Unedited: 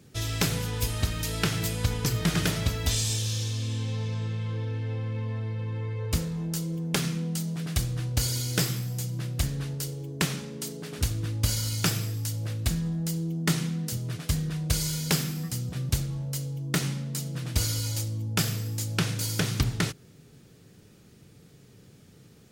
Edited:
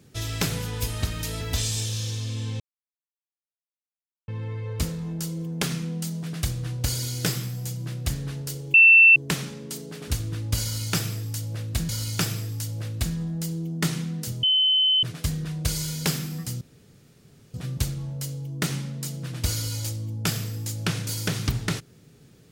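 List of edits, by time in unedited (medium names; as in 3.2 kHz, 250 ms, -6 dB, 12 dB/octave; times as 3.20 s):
1.41–2.74 s: delete
3.93–5.61 s: mute
10.07 s: add tone 2.68 kHz -9.5 dBFS 0.42 s
11.54–12.80 s: loop, 2 plays
14.08 s: add tone 3.05 kHz -17 dBFS 0.60 s
15.66 s: insert room tone 0.93 s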